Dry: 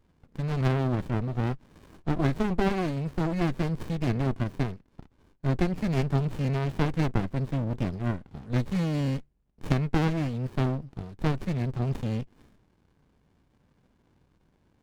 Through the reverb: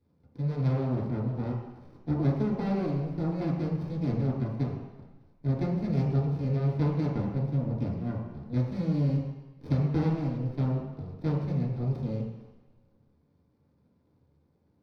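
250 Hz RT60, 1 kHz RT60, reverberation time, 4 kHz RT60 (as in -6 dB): 1.0 s, 1.2 s, 1.1 s, 1.3 s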